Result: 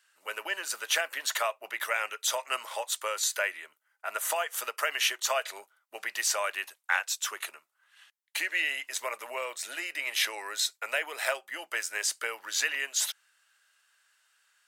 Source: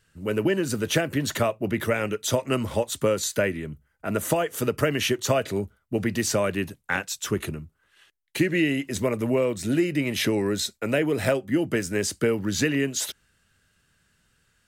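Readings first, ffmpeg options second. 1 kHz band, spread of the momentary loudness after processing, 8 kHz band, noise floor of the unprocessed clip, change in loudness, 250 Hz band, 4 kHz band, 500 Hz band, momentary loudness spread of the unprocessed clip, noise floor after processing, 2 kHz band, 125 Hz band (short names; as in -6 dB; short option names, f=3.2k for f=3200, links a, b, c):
-1.5 dB, 9 LU, 0.0 dB, -69 dBFS, -5.0 dB, -32.5 dB, 0.0 dB, -13.0 dB, 6 LU, -76 dBFS, 0.0 dB, under -40 dB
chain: -af "highpass=f=780:w=0.5412,highpass=f=780:w=1.3066"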